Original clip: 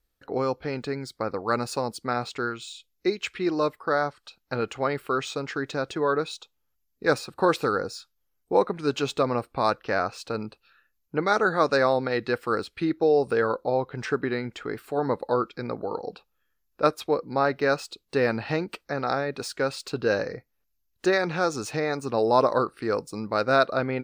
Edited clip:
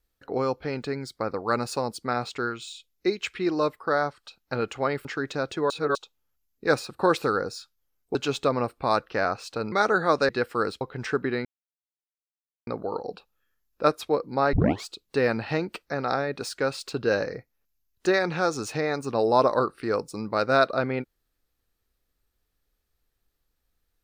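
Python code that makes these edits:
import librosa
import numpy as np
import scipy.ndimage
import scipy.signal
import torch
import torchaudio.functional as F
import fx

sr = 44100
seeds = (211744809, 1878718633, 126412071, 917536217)

y = fx.edit(x, sr, fx.cut(start_s=5.05, length_s=0.39),
    fx.reverse_span(start_s=6.09, length_s=0.25),
    fx.cut(start_s=8.54, length_s=0.35),
    fx.cut(start_s=10.46, length_s=0.77),
    fx.cut(start_s=11.8, length_s=0.41),
    fx.cut(start_s=12.73, length_s=1.07),
    fx.silence(start_s=14.44, length_s=1.22),
    fx.tape_start(start_s=17.52, length_s=0.33), tone=tone)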